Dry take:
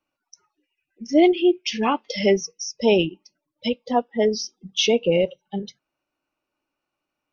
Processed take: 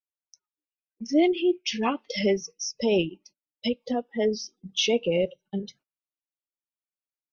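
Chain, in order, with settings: in parallel at +0.5 dB: compression, threshold -26 dBFS, peak gain reduction 14 dB; on the sum: rotary cabinet horn 6.3 Hz, later 1 Hz, at 3.42 s; gate -48 dBFS, range -27 dB; trim -5.5 dB

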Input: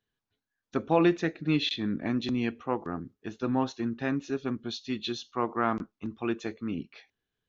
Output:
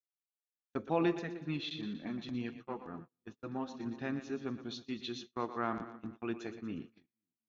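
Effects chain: two-band feedback delay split 310 Hz, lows 258 ms, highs 119 ms, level -11 dB; 1.19–3.86 s: flange 1.2 Hz, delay 3.7 ms, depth 4.7 ms, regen -24%; gate -39 dBFS, range -35 dB; trim -8 dB

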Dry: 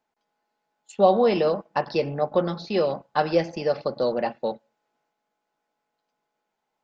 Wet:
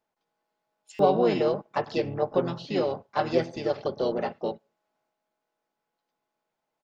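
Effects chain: harmony voices -5 st -4 dB, +5 st -16 dB; buffer glitch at 0.94 s, samples 256, times 8; trim -4.5 dB

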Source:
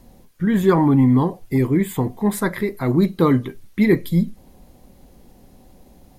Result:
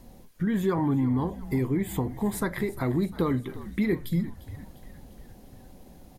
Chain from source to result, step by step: compression 2.5:1, threshold -25 dBFS, peak gain reduction 10.5 dB; on a send: frequency-shifting echo 350 ms, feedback 60%, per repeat -67 Hz, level -16 dB; on the sum: trim -1.5 dB

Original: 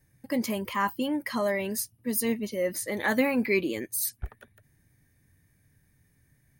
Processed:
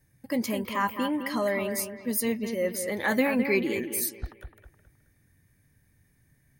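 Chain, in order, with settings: bucket-brigade echo 211 ms, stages 4096, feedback 35%, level -8 dB

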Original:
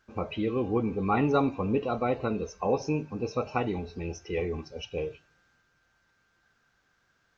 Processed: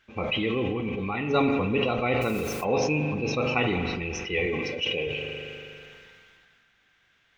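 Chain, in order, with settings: high-order bell 2.6 kHz +11.5 dB 1.2 oct; 0.71–1.30 s: level held to a coarse grid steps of 10 dB; 2.21–2.63 s: added noise white -50 dBFS; 4.46–5.07 s: high-pass 140 Hz 12 dB/octave; spring tank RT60 2.1 s, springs 40 ms, chirp 70 ms, DRR 9 dB; decay stretcher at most 22 dB/s

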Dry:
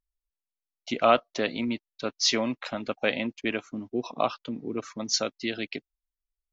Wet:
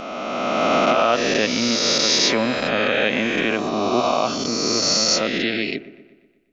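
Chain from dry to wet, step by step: reverse spectral sustain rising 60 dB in 2.79 s; peak limiter -13 dBFS, peak gain reduction 7.5 dB; on a send: feedback echo behind a low-pass 122 ms, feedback 54%, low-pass 1.5 kHz, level -14 dB; on the sum: trim +5 dB

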